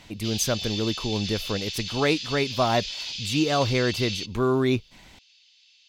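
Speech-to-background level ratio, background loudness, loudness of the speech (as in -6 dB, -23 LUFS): 5.5 dB, -31.5 LUFS, -26.0 LUFS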